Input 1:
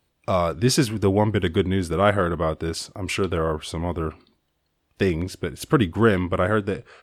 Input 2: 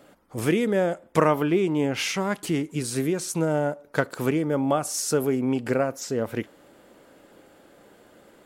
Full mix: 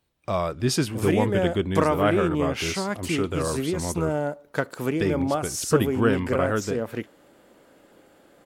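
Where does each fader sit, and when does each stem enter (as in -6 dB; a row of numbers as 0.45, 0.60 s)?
-4.0, -2.0 dB; 0.00, 0.60 s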